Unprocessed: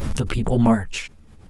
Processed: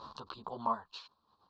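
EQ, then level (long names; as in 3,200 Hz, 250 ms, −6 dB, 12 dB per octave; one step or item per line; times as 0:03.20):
pair of resonant band-passes 2,100 Hz, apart 2 octaves
high-frequency loss of the air 190 metres
+1.0 dB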